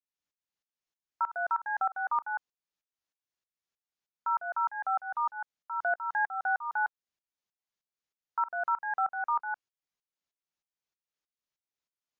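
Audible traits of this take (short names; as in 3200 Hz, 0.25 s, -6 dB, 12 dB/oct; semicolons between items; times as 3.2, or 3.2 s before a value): tremolo saw up 3.2 Hz, depth 95%; MP3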